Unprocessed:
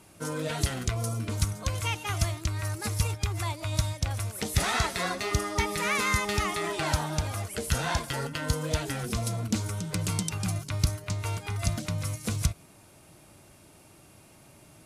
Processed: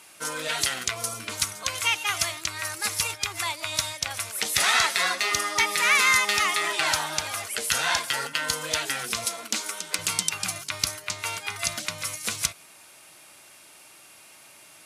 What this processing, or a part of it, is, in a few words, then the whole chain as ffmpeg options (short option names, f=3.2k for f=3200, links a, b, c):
filter by subtraction: -filter_complex "[0:a]asplit=2[a][b];[b]lowpass=2.2k,volume=-1[c];[a][c]amix=inputs=2:normalize=0,asettb=1/sr,asplit=3[d][e][f];[d]atrim=end=9.254[g];[e]atrim=start=9.25:end=9.99,asetpts=PTS-STARTPTS,afade=t=in:d=0.004:c=qsin,afade=t=out:st=0.736:d=0.004:c=qsin,highpass=f=220:w=0.5412,highpass=f=220:w=1.3066[h];[f]atrim=start=9.986[i];[g][h]acrossfade=d=0.004:c1=hsin:c2=qsin[j];[j][i]acrossfade=d=0.004:c1=qsin:c2=hsin,volume=7.5dB"